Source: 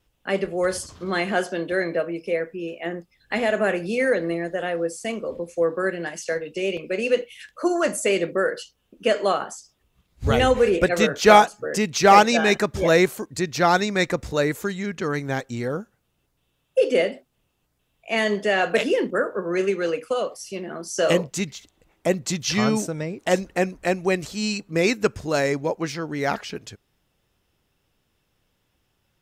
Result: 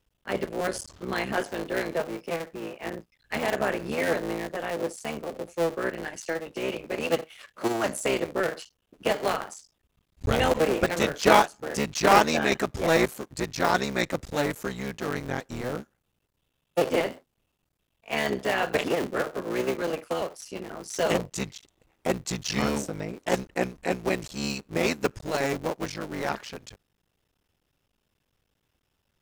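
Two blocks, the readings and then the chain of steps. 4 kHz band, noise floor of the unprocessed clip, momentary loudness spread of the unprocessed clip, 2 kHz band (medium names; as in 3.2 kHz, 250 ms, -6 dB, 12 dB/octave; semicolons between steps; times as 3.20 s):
-4.0 dB, -71 dBFS, 12 LU, -5.0 dB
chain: cycle switcher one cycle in 3, muted; trim -3.5 dB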